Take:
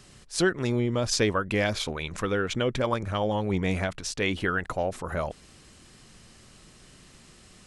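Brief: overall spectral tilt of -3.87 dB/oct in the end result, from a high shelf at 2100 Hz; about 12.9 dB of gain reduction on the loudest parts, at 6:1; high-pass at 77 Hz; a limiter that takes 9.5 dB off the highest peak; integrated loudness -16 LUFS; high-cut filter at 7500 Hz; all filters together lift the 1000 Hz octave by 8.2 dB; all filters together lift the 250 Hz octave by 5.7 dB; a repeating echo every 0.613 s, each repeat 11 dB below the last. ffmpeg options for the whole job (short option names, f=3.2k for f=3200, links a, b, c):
-af "highpass=77,lowpass=7.5k,equalizer=f=250:t=o:g=7,equalizer=f=1k:t=o:g=8.5,highshelf=f=2.1k:g=7.5,acompressor=threshold=-28dB:ratio=6,alimiter=limit=-22dB:level=0:latency=1,aecho=1:1:613|1226|1839:0.282|0.0789|0.0221,volume=17.5dB"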